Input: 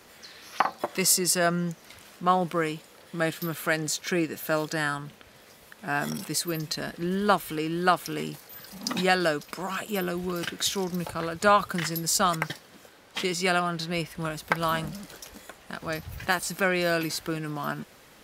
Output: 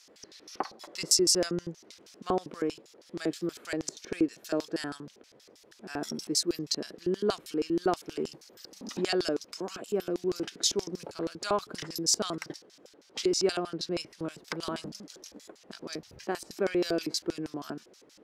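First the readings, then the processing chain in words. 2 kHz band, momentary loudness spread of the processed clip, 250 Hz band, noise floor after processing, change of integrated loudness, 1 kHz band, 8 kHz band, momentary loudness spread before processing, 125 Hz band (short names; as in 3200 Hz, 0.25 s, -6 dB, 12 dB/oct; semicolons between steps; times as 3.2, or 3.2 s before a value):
-13.0 dB, 18 LU, -2.0 dB, -59 dBFS, -4.0 dB, -11.5 dB, -2.0 dB, 17 LU, -10.0 dB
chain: LFO band-pass square 6.3 Hz 360–5500 Hz; gain +5 dB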